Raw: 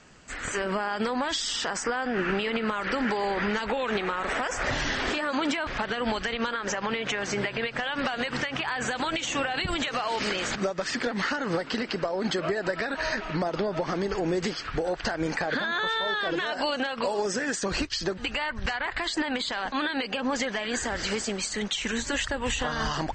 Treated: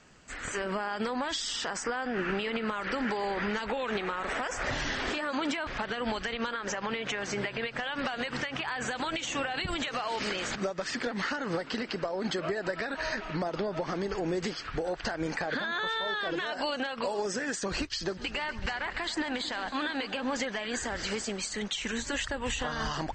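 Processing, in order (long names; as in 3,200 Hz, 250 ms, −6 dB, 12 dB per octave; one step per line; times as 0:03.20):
0:17.94–0:20.44: echo machine with several playback heads 137 ms, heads first and second, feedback 67%, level −19 dB
level −4 dB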